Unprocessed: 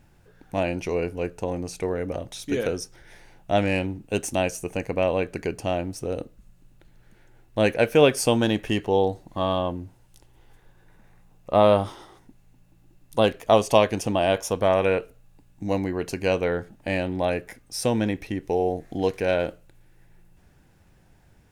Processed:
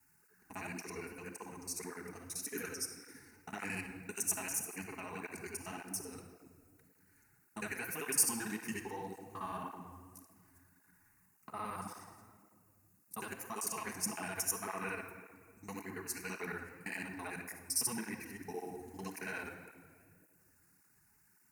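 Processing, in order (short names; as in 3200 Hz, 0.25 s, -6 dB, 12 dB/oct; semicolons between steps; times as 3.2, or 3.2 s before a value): local time reversal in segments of 56 ms; limiter -12.5 dBFS, peak gain reduction 10 dB; RIAA curve recording; fixed phaser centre 1400 Hz, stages 4; shoebox room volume 2800 m³, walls mixed, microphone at 1.4 m; tape flanging out of phase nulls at 1.8 Hz, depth 6.7 ms; gain -7 dB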